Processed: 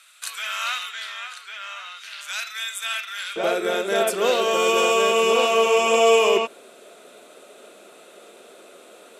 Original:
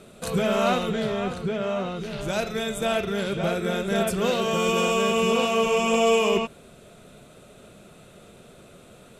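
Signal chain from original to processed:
high-pass filter 1,400 Hz 24 dB per octave, from 0:03.36 320 Hz
level +4.5 dB

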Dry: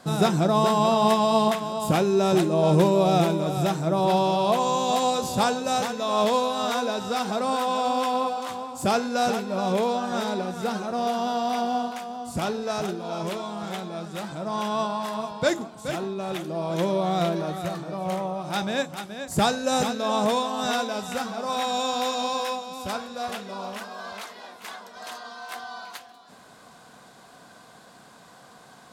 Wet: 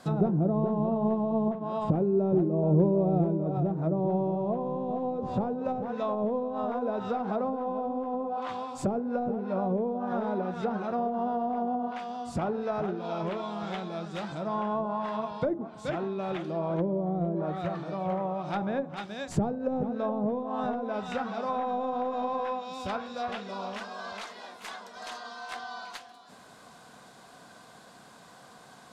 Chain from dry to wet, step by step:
stylus tracing distortion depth 0.038 ms
treble cut that deepens with the level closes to 450 Hz, closed at −20.5 dBFS
level −2 dB

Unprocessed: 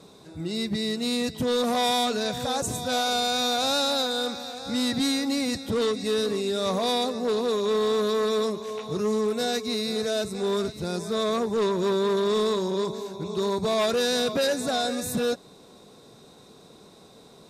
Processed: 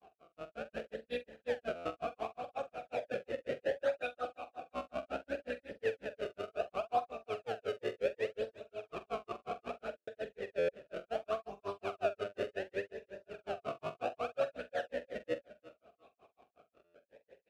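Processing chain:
sub-octave generator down 2 octaves, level +4 dB
sample-and-hold swept by an LFO 31×, swing 160% 0.67 Hz
tape wow and flutter 26 cents
granular cloud 110 ms, grains 5.5 per second, spray 16 ms, pitch spread up and down by 0 semitones
double-tracking delay 45 ms −13 dB
on a send: repeating echo 351 ms, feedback 18%, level −16 dB
on the sum: buffer that repeats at 0:01.75/0:09.97/0:10.58/0:16.84, samples 512
formant filter swept between two vowels a-e 0.43 Hz
level +4 dB

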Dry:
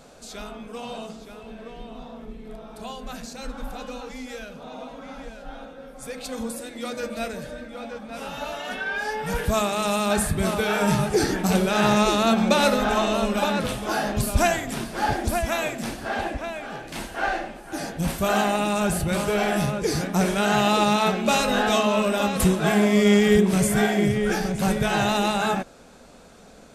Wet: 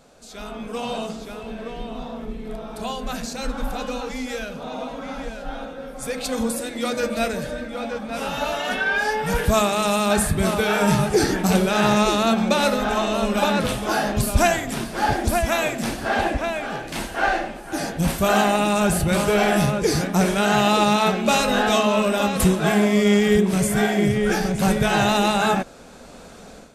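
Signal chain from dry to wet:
automatic gain control
level −4.5 dB

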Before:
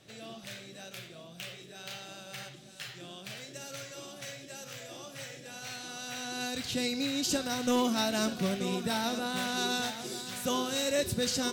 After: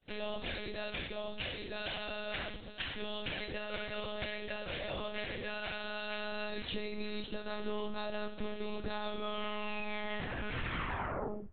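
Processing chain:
turntable brake at the end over 2.62 s
downward compressor 12 to 1, threshold −43 dBFS, peak gain reduction 19 dB
one-pitch LPC vocoder at 8 kHz 210 Hz
coupled-rooms reverb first 0.48 s, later 1.9 s, from −18 dB, DRR 15.5 dB
downward expander −49 dBFS
level +9.5 dB

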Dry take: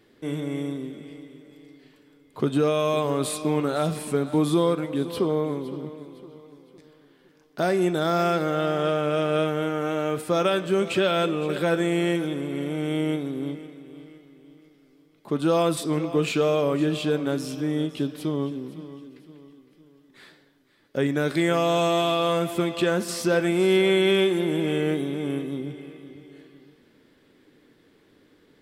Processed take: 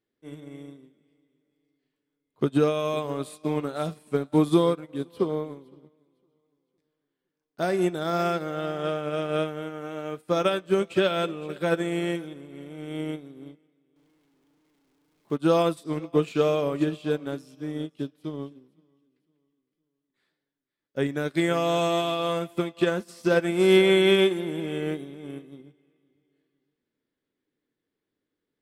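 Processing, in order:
0:13.96–0:15.36: converter with a step at zero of −39.5 dBFS
expander for the loud parts 2.5 to 1, over −37 dBFS
level +3.5 dB

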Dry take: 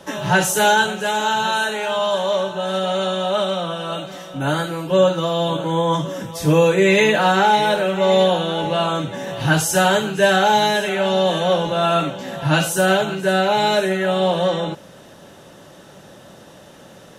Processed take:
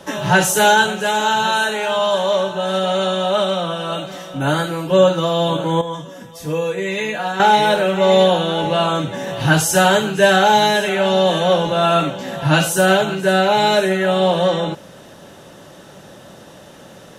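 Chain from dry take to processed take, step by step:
0:05.81–0:07.40: tuned comb filter 240 Hz, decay 0.2 s, harmonics all, mix 80%
level +2.5 dB

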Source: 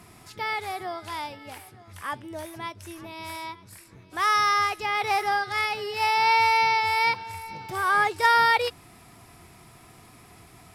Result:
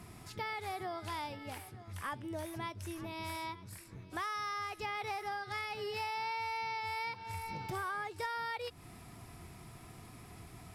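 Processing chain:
low-shelf EQ 260 Hz +7 dB
downward compressor 12 to 1, threshold −31 dBFS, peak gain reduction 16.5 dB
level −4.5 dB

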